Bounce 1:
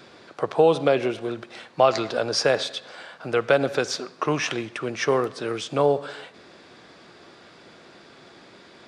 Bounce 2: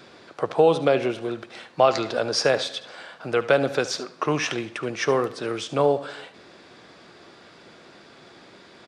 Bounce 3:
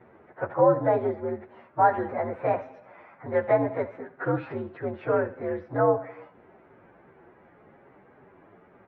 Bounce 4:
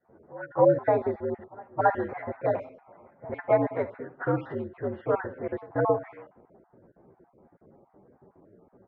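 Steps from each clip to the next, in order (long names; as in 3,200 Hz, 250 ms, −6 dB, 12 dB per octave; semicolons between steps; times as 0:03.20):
single-tap delay 73 ms −15.5 dB
partials spread apart or drawn together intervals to 119%; low-pass filter 1,700 Hz 24 dB per octave
time-frequency cells dropped at random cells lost 32%; echo ahead of the sound 270 ms −22 dB; low-pass that shuts in the quiet parts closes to 580 Hz, open at −24 dBFS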